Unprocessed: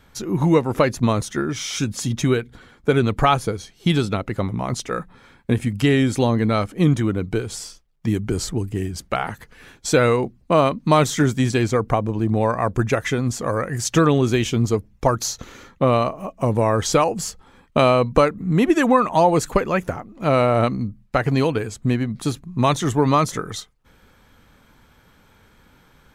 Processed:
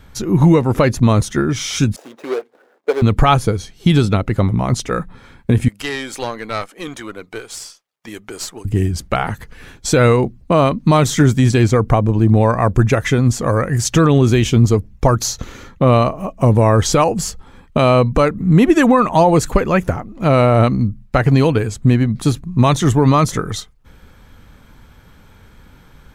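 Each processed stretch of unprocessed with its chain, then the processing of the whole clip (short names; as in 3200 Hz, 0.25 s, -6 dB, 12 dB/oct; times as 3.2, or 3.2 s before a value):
1.96–3.02 median filter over 41 samples + HPF 490 Hz 24 dB/oct + tilt shelf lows +4.5 dB, about 1100 Hz
5.68–8.65 HPF 650 Hz + tube stage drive 18 dB, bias 0.6
whole clip: low shelf 150 Hz +9 dB; maximiser +5.5 dB; gain -1 dB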